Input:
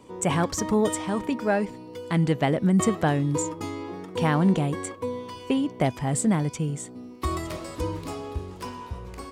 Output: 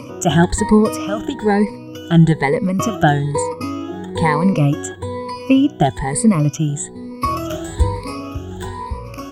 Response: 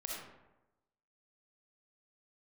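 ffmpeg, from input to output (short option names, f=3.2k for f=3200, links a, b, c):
-af "afftfilt=real='re*pow(10,21/40*sin(2*PI*(0.92*log(max(b,1)*sr/1024/100)/log(2)-(1.1)*(pts-256)/sr)))':imag='im*pow(10,21/40*sin(2*PI*(0.92*log(max(b,1)*sr/1024/100)/log(2)-(1.1)*(pts-256)/sr)))':win_size=1024:overlap=0.75,lowshelf=f=75:g=10,acompressor=mode=upward:threshold=-28dB:ratio=2.5,volume=3dB"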